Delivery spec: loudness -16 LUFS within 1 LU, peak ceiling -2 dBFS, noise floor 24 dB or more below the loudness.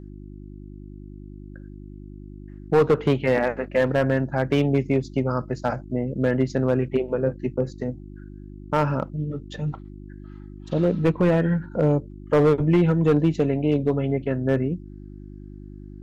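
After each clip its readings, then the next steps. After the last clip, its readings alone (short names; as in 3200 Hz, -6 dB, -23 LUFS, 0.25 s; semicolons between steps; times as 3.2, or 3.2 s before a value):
clipped 0.9%; flat tops at -12.0 dBFS; hum 50 Hz; harmonics up to 350 Hz; hum level -39 dBFS; loudness -23.0 LUFS; peak -12.0 dBFS; loudness target -16.0 LUFS
-> clip repair -12 dBFS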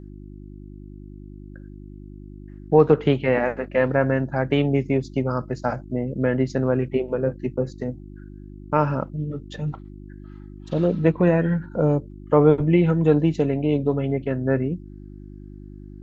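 clipped 0.0%; hum 50 Hz; harmonics up to 350 Hz; hum level -38 dBFS
-> de-hum 50 Hz, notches 7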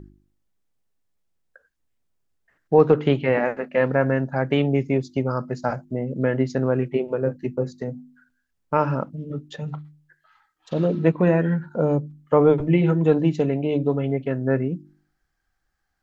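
hum none; loudness -22.5 LUFS; peak -3.5 dBFS; loudness target -16.0 LUFS
-> gain +6.5 dB; limiter -2 dBFS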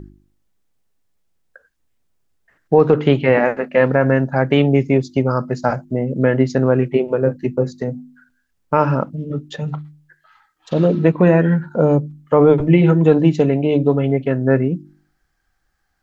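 loudness -16.5 LUFS; peak -2.0 dBFS; noise floor -68 dBFS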